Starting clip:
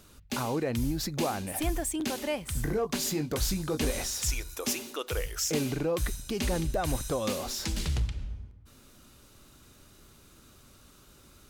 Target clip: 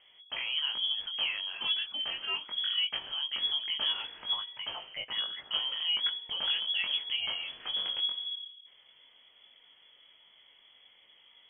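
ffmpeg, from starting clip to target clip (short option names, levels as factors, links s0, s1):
-af "flanger=delay=19:depth=2.9:speed=0.2,lowpass=f=2900:t=q:w=0.5098,lowpass=f=2900:t=q:w=0.6013,lowpass=f=2900:t=q:w=0.9,lowpass=f=2900:t=q:w=2.563,afreqshift=-3400"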